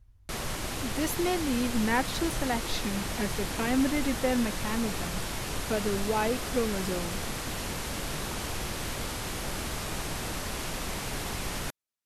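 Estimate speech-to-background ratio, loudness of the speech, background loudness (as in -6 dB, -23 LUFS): 3.0 dB, -31.0 LUFS, -34.0 LUFS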